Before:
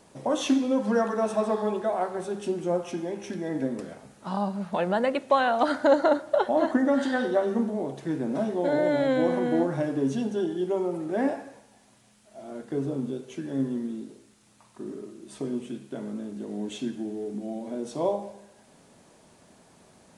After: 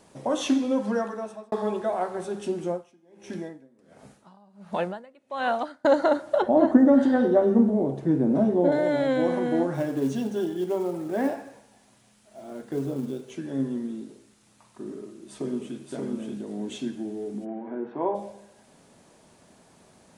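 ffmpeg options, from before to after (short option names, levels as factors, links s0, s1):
-filter_complex "[0:a]asettb=1/sr,asplit=3[s0][s1][s2];[s0]atrim=end=2.654[s3];[s1]atrim=start=2.65:end=5.85,asetpts=PTS-STARTPTS,afade=t=in:d=0.004:c=qsin,afade=t=out:st=3.196:d=0.004:c=qsin,aeval=exprs='val(0)*pow(10,-29*(0.5-0.5*cos(2*PI*1.4*n/s))/20)':c=same[s4];[s2]atrim=start=5.846[s5];[s3][s4]acrossfade=d=0.004:c1=hsin:c2=qsin[s6];[s6][s5]acrossfade=d=0.004:c1=qsin:c2=hsin,asettb=1/sr,asplit=3[s7][s8][s9];[s7]atrim=end=6.424[s10];[s8]atrim=start=6.42:end=8.72,asetpts=PTS-STARTPTS,afade=t=in:d=0.004:c=qsin,afade=t=out:st=2.296:d=0.004:c=qsin,tiltshelf=f=970:g=8.5[s11];[s9]atrim=start=8.716[s12];[s10][s11]acrossfade=d=0.004:c1=hsin:c2=qsin[s13];[s13][s12]acrossfade=d=0.004:c1=qsin:c2=hsin,asettb=1/sr,asplit=3[s14][s15][s16];[s14]atrim=end=9.744[s17];[s15]atrim=start=9.74:end=13.31,asetpts=PTS-STARTPTS,afade=t=in:d=0.004:c=qsin,afade=t=out:st=3.566:d=0.004:c=qsin,acrusher=bits=7:mode=log:mix=0:aa=0.000001[s18];[s16]atrim=start=13.306[s19];[s17][s18]acrossfade=d=0.004:c1=hsin:c2=qsin[s20];[s20][s19]acrossfade=d=0.004:c1=qsin:c2=hsin,asplit=2[s21][s22];[s22]afade=t=in:st=14.82:d=0.01,afade=t=out:st=15.83:d=0.01,aecho=0:1:580|1160|1740:0.794328|0.119149|0.0178724[s23];[s21][s23]amix=inputs=2:normalize=0,asplit=3[s24][s25][s26];[s24]afade=t=out:st=17.44:d=0.02[s27];[s25]highpass=140,equalizer=f=170:t=q:w=4:g=-8,equalizer=f=370:t=q:w=4:g=4,equalizer=f=570:t=q:w=4:g=-7,equalizer=f=900:t=q:w=4:g=6,equalizer=f=1600:t=q:w=4:g=7,lowpass=f=2200:w=0.5412,lowpass=f=2200:w=1.3066,afade=t=in:st=17.44:d=0.02,afade=t=out:st=18.14:d=0.02[s28];[s26]afade=t=in:st=18.14:d=0.02[s29];[s27][s28][s29]amix=inputs=3:normalize=0,asplit=2[s30][s31];[s30]atrim=end=1.52,asetpts=PTS-STARTPTS,afade=t=out:st=0.77:d=0.75[s32];[s31]atrim=start=1.52,asetpts=PTS-STARTPTS,afade=t=in:d=0.004:c=hsin[s33];[s32][s33]concat=n=2:v=0:a=1"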